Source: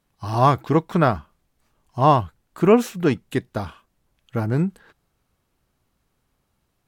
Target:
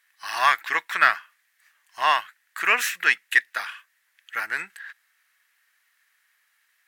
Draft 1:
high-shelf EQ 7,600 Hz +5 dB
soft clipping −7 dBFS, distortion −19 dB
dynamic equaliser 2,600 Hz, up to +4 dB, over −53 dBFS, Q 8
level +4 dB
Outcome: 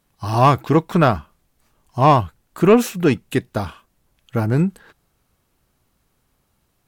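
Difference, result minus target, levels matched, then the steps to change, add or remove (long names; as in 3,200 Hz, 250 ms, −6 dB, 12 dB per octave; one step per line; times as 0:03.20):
2,000 Hz band −14.5 dB
add first: high-pass with resonance 1,800 Hz, resonance Q 5.9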